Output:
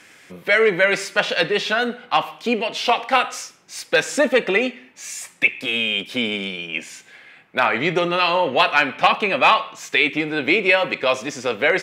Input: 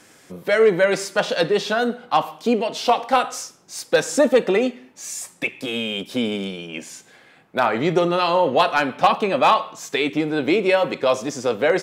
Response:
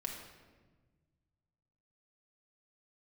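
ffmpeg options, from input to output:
-af "equalizer=f=2300:w=0.98:g=12,volume=0.708"

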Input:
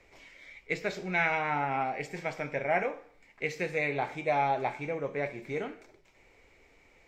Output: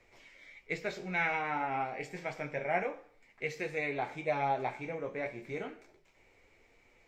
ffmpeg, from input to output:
-af "flanger=delay=8.3:depth=9.2:regen=-38:speed=0.29:shape=sinusoidal"

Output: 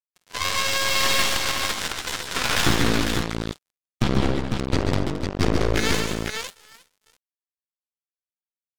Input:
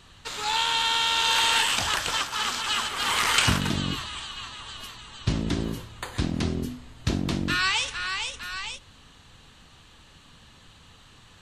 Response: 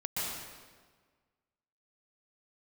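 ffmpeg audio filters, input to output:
-af "lowpass=4000,aemphasis=mode=reproduction:type=50kf,acrusher=bits=3:mix=0:aa=0.5,atempo=1.3,aeval=exprs='0.299*(cos(1*acos(clip(val(0)/0.299,-1,1)))-cos(1*PI/2))+0.00376*(cos(2*acos(clip(val(0)/0.299,-1,1)))-cos(2*PI/2))+0.119*(cos(4*acos(clip(val(0)/0.299,-1,1)))-cos(4*PI/2))':c=same,asetrate=52444,aresample=44100,atempo=0.840896,aecho=1:1:51|133|147|219|275|501:0.237|0.447|0.398|0.237|0.158|0.562"

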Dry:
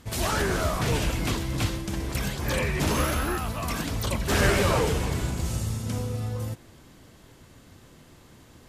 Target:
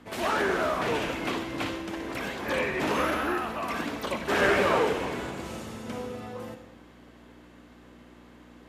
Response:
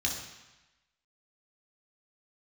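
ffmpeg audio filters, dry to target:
-filter_complex "[0:a]aeval=exprs='val(0)+0.00891*(sin(2*PI*60*n/s)+sin(2*PI*2*60*n/s)/2+sin(2*PI*3*60*n/s)/3+sin(2*PI*4*60*n/s)/4+sin(2*PI*5*60*n/s)/5)':c=same,acrossover=split=230 3100:gain=0.0708 1 0.2[s0][s1][s2];[s0][s1][s2]amix=inputs=3:normalize=0,asplit=2[s3][s4];[1:a]atrim=start_sample=2205,adelay=58[s5];[s4][s5]afir=irnorm=-1:irlink=0,volume=0.188[s6];[s3][s6]amix=inputs=2:normalize=0,volume=1.19"

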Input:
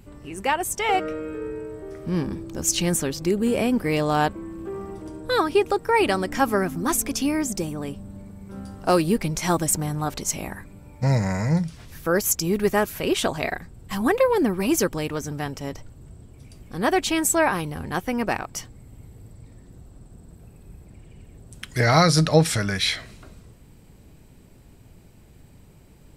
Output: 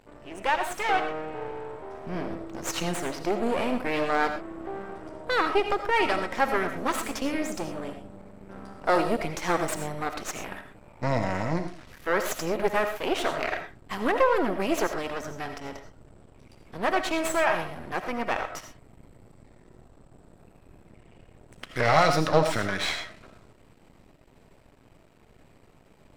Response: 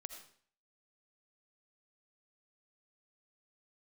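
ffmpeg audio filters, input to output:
-filter_complex "[0:a]aeval=exprs='max(val(0),0)':c=same,asplit=2[s0][s1];[s1]highpass=f=720:p=1,volume=4.47,asoftclip=type=tanh:threshold=0.631[s2];[s0][s2]amix=inputs=2:normalize=0,lowpass=f=1500:p=1,volume=0.501[s3];[1:a]atrim=start_sample=2205,atrim=end_sample=6174[s4];[s3][s4]afir=irnorm=-1:irlink=0,volume=1.5"

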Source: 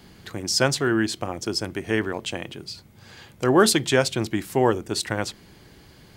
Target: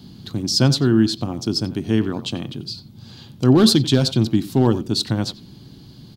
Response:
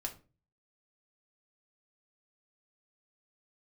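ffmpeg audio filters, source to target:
-filter_complex "[0:a]asettb=1/sr,asplit=3[s0][s1][s2];[s0]atrim=end=2.084[s3];[s1]atrim=start=2.08:end=2.49,asetpts=PTS-STARTPTS,afade=t=in:d=0.004:c=qsin,afade=t=out:st=0.406:d=0.004:c=qsin,equalizer=f=1200:t=o:w=0.26:g=7.5[s4];[s2]atrim=start=2.486[s5];[s3][s4]acrossfade=d=0.004:c1=hsin:c2=qsin[s6];[s6][s5]acrossfade=d=0.004:c1=qsin:c2=hsin,asplit=2[s7][s8];[s8]adelay=90,highpass=300,lowpass=3400,asoftclip=type=hard:threshold=0.251,volume=0.2[s9];[s7][s9]amix=inputs=2:normalize=0,asettb=1/sr,asplit=3[s10][s11][s12];[s10]atrim=end=3.544[s13];[s11]atrim=start=3.54:end=4.67,asetpts=PTS-STARTPTS,afade=t=in:d=0.004:c=qsin,afade=t=out:st=1.126:d=0.004:c=qsin,asoftclip=type=hard:threshold=0.251[s14];[s12]atrim=start=4.666[s15];[s13][s14]acrossfade=d=0.004:c1=hsin:c2=qsin[s16];[s16][s15]acrossfade=d=0.004:c1=qsin:c2=hsin,equalizer=f=125:t=o:w=1:g=10,equalizer=f=250:t=o:w=1:g=10,equalizer=f=500:t=o:w=1:g=-5,equalizer=f=2000:t=o:w=1:g=-12,equalizer=f=4000:t=o:w=1:g=11,equalizer=f=8000:t=o:w=1:g=-5"

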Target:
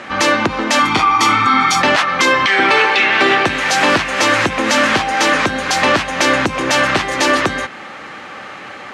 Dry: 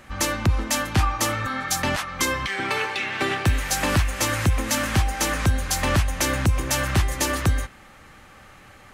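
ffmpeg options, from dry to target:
-filter_complex "[0:a]asettb=1/sr,asplit=3[s0][s1][s2];[s0]atrim=end=0.794[s3];[s1]atrim=start=0.79:end=1.81,asetpts=PTS-STARTPTS,afade=t=in:d=0.004:c=qsin,afade=t=out:st=1.016:d=0.004:c=qsin,aecho=1:1:0.9:0.9,atrim=end_sample=44982[s4];[s2]atrim=start=1.806[s5];[s3][s4]acrossfade=d=0.004:c1=hsin:c2=qsin[s6];[s6][s5]acrossfade=d=0.004:c1=qsin:c2=hsin,asplit=2[s7][s8];[s8]acompressor=threshold=0.0398:ratio=6,volume=1.19[s9];[s7][s9]amix=inputs=2:normalize=0,apsyclip=6.68,highpass=260,lowpass=4500,volume=0.531"

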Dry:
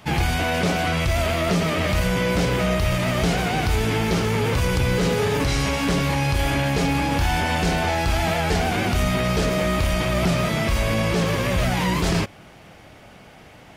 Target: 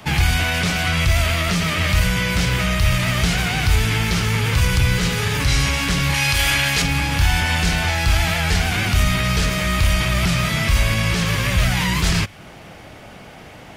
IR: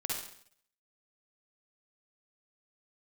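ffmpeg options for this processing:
-filter_complex "[0:a]asettb=1/sr,asplit=3[s0][s1][s2];[s0]atrim=end=6.144[s3];[s1]atrim=start=6.14:end=6.82,asetpts=PTS-STARTPTS,afade=t=in:d=0.004:c=qsin,afade=t=out:st=0.676:d=0.004:c=qsin,tiltshelf=f=860:g=-6[s4];[s2]atrim=start=6.816[s5];[s3][s4]acrossfade=d=0.004:c1=hsin:c2=qsin[s6];[s6][s5]acrossfade=d=0.004:c1=qsin:c2=hsin,acrossover=split=160|1200[s7][s8][s9];[s8]acompressor=threshold=0.0158:ratio=10[s10];[s7][s10][s9]amix=inputs=3:normalize=0,volume=2"

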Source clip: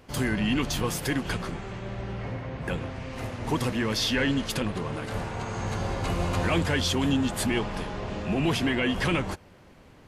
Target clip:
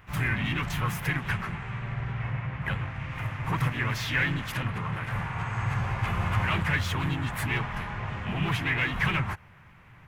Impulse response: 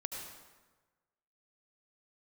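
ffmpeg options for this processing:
-filter_complex "[0:a]volume=11.9,asoftclip=hard,volume=0.0841,equalizer=f=125:t=o:w=1:g=9,equalizer=f=250:t=o:w=1:g=-10,equalizer=f=500:t=o:w=1:g=-9,equalizer=f=1000:t=o:w=1:g=5,equalizer=f=2000:t=o:w=1:g=9,equalizer=f=4000:t=o:w=1:g=-10,equalizer=f=8000:t=o:w=1:g=-7,asplit=3[s0][s1][s2];[s1]asetrate=52444,aresample=44100,atempo=0.840896,volume=0.631[s3];[s2]asetrate=58866,aresample=44100,atempo=0.749154,volume=0.158[s4];[s0][s3][s4]amix=inputs=3:normalize=0,volume=0.708"

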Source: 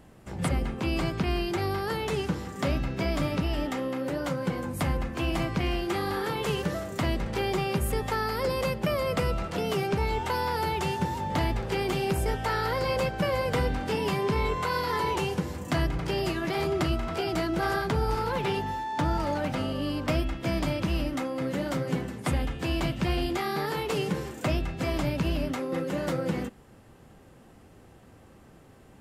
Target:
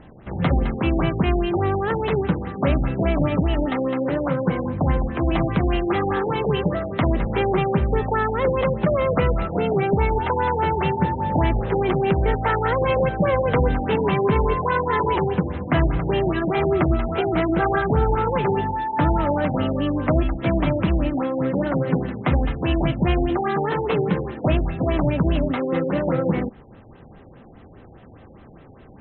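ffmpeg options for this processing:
-filter_complex "[0:a]acrossover=split=4300[s0][s1];[s1]acompressor=threshold=0.00178:ratio=4:attack=1:release=60[s2];[s0][s2]amix=inputs=2:normalize=0,afftfilt=real='re*lt(b*sr/1024,850*pow(4200/850,0.5+0.5*sin(2*PI*4.9*pts/sr)))':imag='im*lt(b*sr/1024,850*pow(4200/850,0.5+0.5*sin(2*PI*4.9*pts/sr)))':win_size=1024:overlap=0.75,volume=2.51"

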